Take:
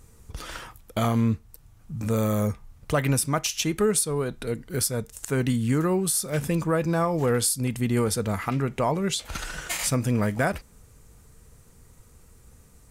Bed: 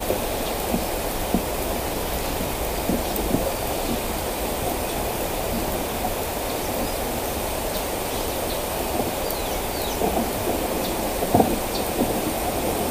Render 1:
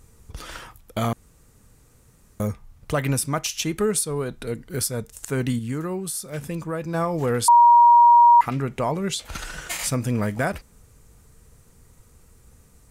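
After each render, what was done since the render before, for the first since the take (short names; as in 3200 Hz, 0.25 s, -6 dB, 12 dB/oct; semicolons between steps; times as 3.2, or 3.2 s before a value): 1.13–2.4 room tone; 5.59–6.94 gain -5 dB; 7.48–8.41 bleep 950 Hz -9 dBFS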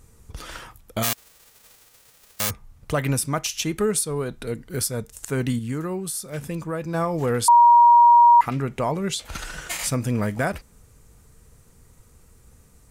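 1.02–2.49 spectral whitening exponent 0.1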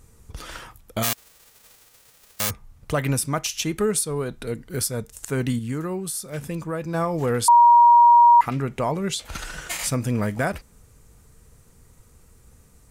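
nothing audible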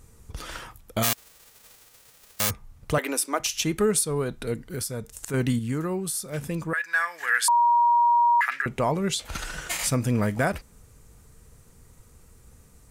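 2.98–3.4 steep high-pass 290 Hz; 4.67–5.34 compressor 2:1, threshold -31 dBFS; 6.73–8.66 resonant high-pass 1700 Hz, resonance Q 10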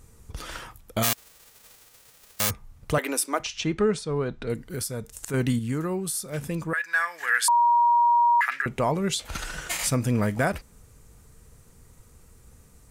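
3.43–4.5 Gaussian blur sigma 1.6 samples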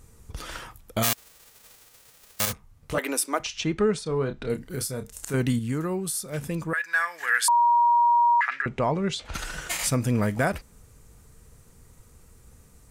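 2.45–2.98 detuned doubles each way 58 cents; 4.03–5.36 doubler 30 ms -8.5 dB; 8.34–9.34 air absorption 96 m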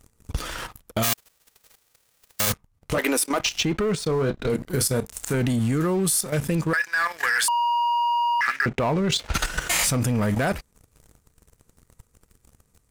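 sample leveller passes 3; level quantiser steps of 11 dB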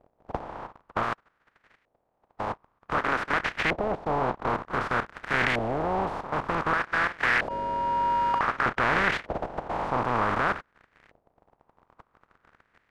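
spectral contrast lowered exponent 0.2; LFO low-pass saw up 0.54 Hz 630–2000 Hz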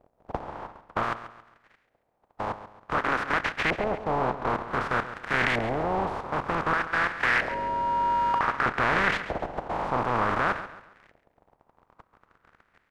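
feedback echo 0.137 s, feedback 37%, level -13 dB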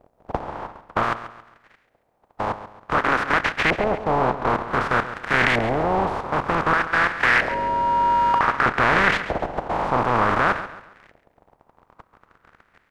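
gain +6 dB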